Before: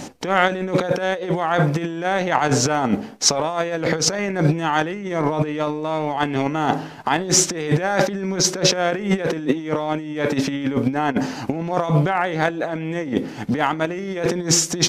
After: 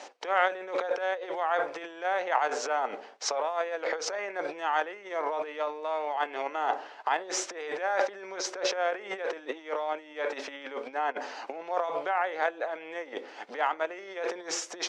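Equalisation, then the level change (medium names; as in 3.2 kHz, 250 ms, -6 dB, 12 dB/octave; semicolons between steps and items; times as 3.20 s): high-pass 490 Hz 24 dB/octave; distance through air 110 m; dynamic bell 4.3 kHz, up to -5 dB, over -37 dBFS, Q 0.89; -6.0 dB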